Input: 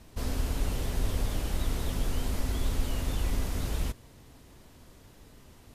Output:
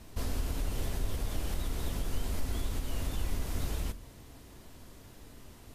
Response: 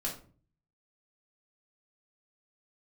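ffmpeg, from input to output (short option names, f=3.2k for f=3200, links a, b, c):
-filter_complex "[0:a]acompressor=threshold=-32dB:ratio=3,asplit=2[a][b];[1:a]atrim=start_sample=2205,highshelf=f=7k:g=11.5[c];[b][c]afir=irnorm=-1:irlink=0,volume=-14dB[d];[a][d]amix=inputs=2:normalize=0"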